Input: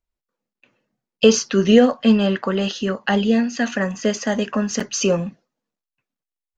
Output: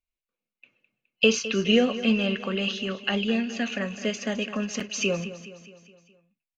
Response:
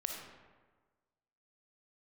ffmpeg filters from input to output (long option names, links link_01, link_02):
-filter_complex "[0:a]superequalizer=9b=0.631:12b=3.55:13b=1.78,asplit=2[link_01][link_02];[link_02]aecho=0:1:209|418|627|836|1045:0.2|0.108|0.0582|0.0314|0.017[link_03];[link_01][link_03]amix=inputs=2:normalize=0,volume=-8.5dB"